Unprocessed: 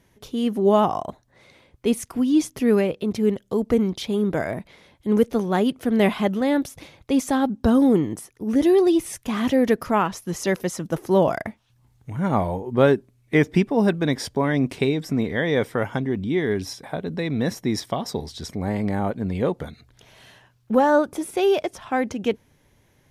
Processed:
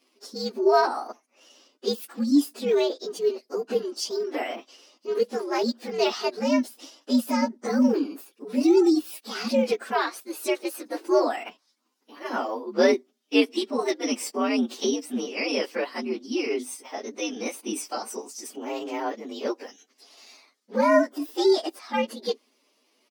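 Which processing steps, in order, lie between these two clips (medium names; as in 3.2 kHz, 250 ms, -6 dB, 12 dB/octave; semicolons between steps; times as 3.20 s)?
frequency axis rescaled in octaves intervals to 120%; brick-wall FIR high-pass 250 Hz; peaking EQ 5.7 kHz +9 dB 1.1 oct; pitch shift -2 st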